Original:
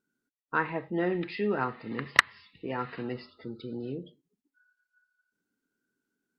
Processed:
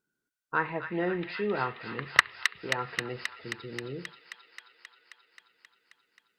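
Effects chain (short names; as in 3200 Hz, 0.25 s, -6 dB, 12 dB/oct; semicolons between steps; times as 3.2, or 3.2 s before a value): bell 250 Hz -9.5 dB 0.43 oct; on a send: thin delay 0.266 s, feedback 75%, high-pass 2100 Hz, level -3.5 dB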